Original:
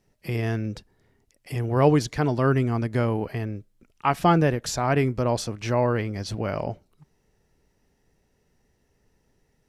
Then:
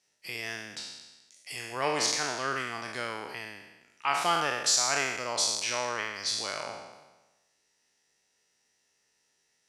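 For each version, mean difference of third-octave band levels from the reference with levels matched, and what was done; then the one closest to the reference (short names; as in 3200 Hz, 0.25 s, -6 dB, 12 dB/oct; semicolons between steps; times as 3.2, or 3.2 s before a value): 13.0 dB: spectral trails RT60 1.13 s; weighting filter ITU-R 468; gain -8 dB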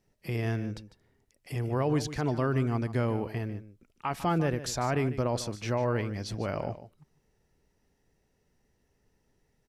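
3.0 dB: limiter -15 dBFS, peak gain reduction 8 dB; on a send: echo 0.149 s -14 dB; on the sum: gain -4.5 dB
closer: second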